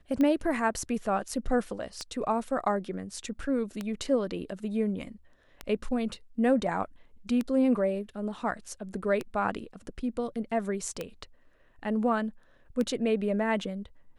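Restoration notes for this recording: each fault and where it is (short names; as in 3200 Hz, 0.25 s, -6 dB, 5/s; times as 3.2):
tick 33 1/3 rpm -18 dBFS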